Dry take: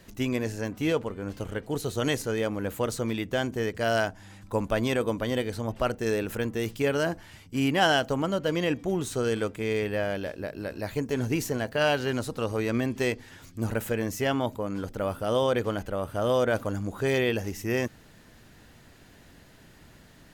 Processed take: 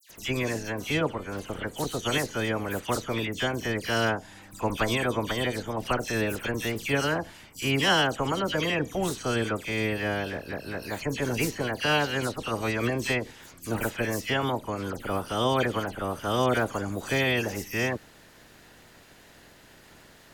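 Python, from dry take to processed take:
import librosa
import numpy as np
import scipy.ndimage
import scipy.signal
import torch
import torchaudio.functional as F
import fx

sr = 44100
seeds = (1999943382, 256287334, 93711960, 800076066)

y = fx.spec_clip(x, sr, under_db=12)
y = fx.dispersion(y, sr, late='lows', ms=97.0, hz=2900.0)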